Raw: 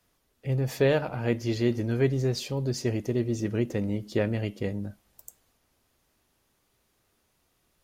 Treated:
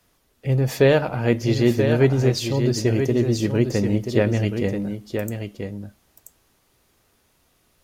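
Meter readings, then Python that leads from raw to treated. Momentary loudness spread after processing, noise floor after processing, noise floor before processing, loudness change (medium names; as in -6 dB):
13 LU, -64 dBFS, -72 dBFS, +7.0 dB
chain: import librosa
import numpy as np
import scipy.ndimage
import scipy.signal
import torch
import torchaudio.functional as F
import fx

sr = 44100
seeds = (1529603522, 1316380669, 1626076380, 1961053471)

y = x + 10.0 ** (-7.0 / 20.0) * np.pad(x, (int(982 * sr / 1000.0), 0))[:len(x)]
y = y * librosa.db_to_amplitude(7.0)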